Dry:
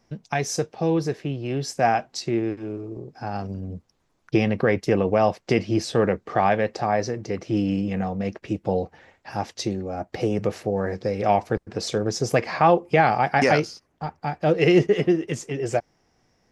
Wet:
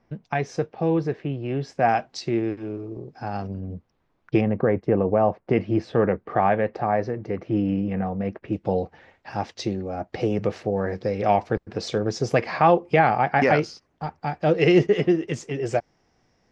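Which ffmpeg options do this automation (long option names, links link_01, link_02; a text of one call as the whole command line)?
ffmpeg -i in.wav -af "asetnsamples=nb_out_samples=441:pad=0,asendcmd='1.89 lowpass f 5100;3.48 lowpass f 2900;4.41 lowpass f 1200;5.53 lowpass f 2000;8.53 lowpass f 4800;12.99 lowpass f 2900;13.62 lowpass f 6100',lowpass=2600" out.wav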